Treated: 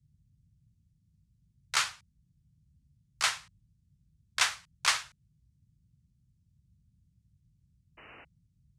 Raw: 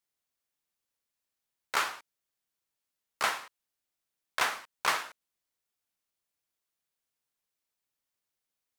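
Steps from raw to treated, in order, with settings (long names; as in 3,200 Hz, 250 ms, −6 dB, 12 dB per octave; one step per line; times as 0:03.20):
meter weighting curve ITU-R 468
sound drawn into the spectrogram noise, 0:07.97–0:08.25, 210–3,000 Hz −39 dBFS
noise in a band 40–160 Hz −52 dBFS
expander for the loud parts 1.5 to 1, over −43 dBFS
level −3 dB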